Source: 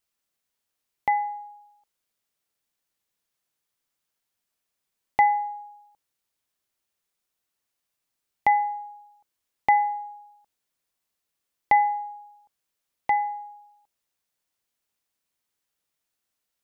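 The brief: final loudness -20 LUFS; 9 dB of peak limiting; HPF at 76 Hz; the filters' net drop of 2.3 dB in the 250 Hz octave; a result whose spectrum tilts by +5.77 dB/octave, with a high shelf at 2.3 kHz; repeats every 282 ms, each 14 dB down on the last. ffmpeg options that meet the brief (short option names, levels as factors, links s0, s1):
-af "highpass=76,equalizer=f=250:t=o:g=-3,highshelf=f=2300:g=-6,alimiter=limit=0.126:level=0:latency=1,aecho=1:1:282|564:0.2|0.0399,volume=2.99"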